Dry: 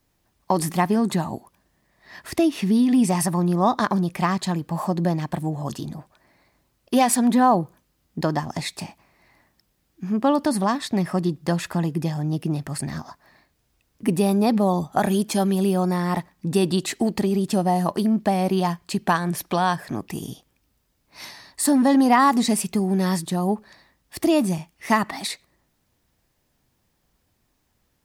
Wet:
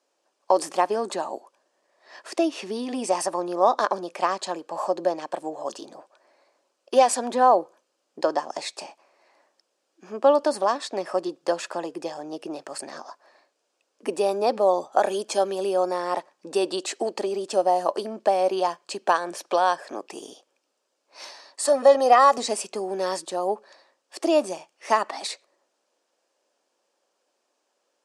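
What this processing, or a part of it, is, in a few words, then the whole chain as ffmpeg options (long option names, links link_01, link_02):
phone speaker on a table: -filter_complex "[0:a]highpass=frequency=370:width=0.5412,highpass=frequency=370:width=1.3066,equalizer=frequency=550:width_type=q:width=4:gain=7,equalizer=frequency=2000:width_type=q:width=4:gain=-8,equalizer=frequency=3700:width_type=q:width=4:gain=-4,lowpass=frequency=8400:width=0.5412,lowpass=frequency=8400:width=1.3066,asettb=1/sr,asplit=3[link_01][link_02][link_03];[link_01]atrim=end=21.674[link_04];[link_02]atrim=start=21.67:end=22.38,asetpts=PTS-STARTPTS,afade=type=in:duration=0.004:curve=qsin,afade=type=out:start_time=0.706:duration=0.004:curve=qsin,aecho=1:1:1.6:0.68,atrim=end_sample=31311[link_05];[link_03]atrim=start=22.376[link_06];[link_04][link_05]acrossfade=duration=0.004:curve1=hsin:curve2=qsin[link_07];[link_07][link_06]acrossfade=duration=0.004:curve1=qsin:curve2=hsin"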